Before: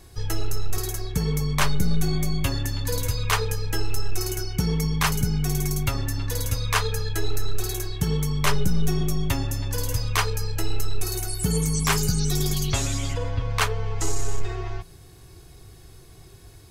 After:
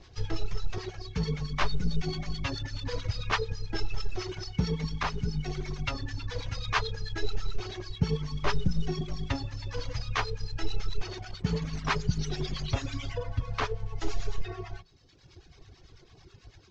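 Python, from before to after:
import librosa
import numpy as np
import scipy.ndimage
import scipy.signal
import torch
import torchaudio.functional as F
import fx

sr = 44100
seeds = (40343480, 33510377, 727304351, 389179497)

y = fx.cvsd(x, sr, bps=32000)
y = fx.dereverb_blind(y, sr, rt60_s=1.3)
y = fx.harmonic_tremolo(y, sr, hz=9.1, depth_pct=70, crossover_hz=860.0)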